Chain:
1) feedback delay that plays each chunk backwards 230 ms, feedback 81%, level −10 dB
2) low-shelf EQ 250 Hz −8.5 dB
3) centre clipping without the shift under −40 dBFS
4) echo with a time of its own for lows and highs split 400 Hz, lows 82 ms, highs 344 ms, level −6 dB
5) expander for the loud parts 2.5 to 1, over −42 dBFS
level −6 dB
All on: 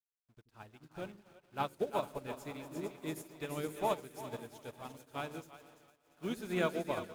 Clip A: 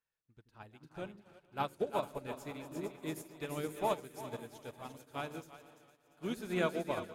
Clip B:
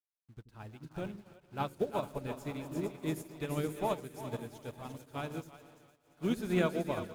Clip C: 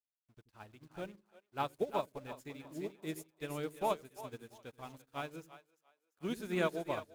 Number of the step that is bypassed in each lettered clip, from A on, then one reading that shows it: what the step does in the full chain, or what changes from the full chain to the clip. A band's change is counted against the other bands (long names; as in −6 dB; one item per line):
3, distortion level −19 dB
2, 125 Hz band +6.5 dB
1, 8 kHz band −1.5 dB